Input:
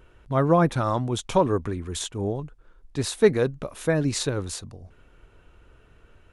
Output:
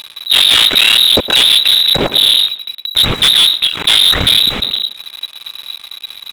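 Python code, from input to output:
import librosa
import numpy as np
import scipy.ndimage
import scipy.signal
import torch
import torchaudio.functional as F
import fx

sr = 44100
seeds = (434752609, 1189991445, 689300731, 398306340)

p1 = fx.cycle_switch(x, sr, every=3, mode='muted')
p2 = fx.fold_sine(p1, sr, drive_db=16, ceiling_db=-5.5)
p3 = p1 + (p2 * 10.0 ** (-10.0 / 20.0))
p4 = fx.cheby_harmonics(p3, sr, harmonics=(4, 5), levels_db=(-19, -24), full_scale_db=-4.0)
p5 = fx.freq_invert(p4, sr, carrier_hz=3900)
p6 = fx.leveller(p5, sr, passes=3)
y = p6 + fx.echo_tape(p6, sr, ms=111, feedback_pct=38, wet_db=-10.5, lp_hz=2000.0, drive_db=3.0, wow_cents=13, dry=0)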